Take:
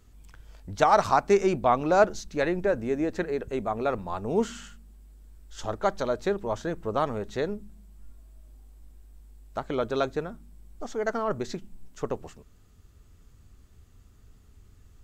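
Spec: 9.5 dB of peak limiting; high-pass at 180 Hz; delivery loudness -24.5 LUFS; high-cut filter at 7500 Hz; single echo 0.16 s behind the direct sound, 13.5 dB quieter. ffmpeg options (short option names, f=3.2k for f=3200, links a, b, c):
-af "highpass=180,lowpass=7.5k,alimiter=limit=-15dB:level=0:latency=1,aecho=1:1:160:0.211,volume=5dB"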